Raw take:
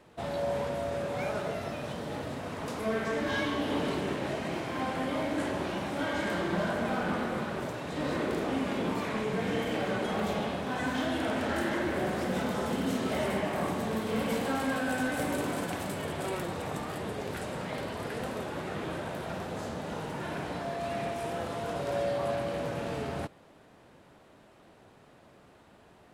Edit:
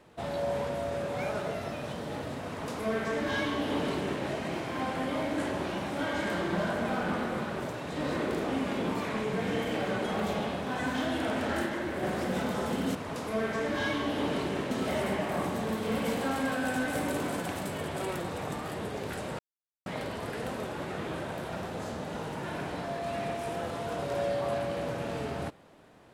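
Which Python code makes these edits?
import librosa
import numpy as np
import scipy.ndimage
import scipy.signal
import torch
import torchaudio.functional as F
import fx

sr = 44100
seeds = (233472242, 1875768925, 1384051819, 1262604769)

y = fx.edit(x, sr, fx.duplicate(start_s=2.47, length_s=1.76, to_s=12.95),
    fx.clip_gain(start_s=11.66, length_s=0.37, db=-3.0),
    fx.insert_silence(at_s=17.63, length_s=0.47), tone=tone)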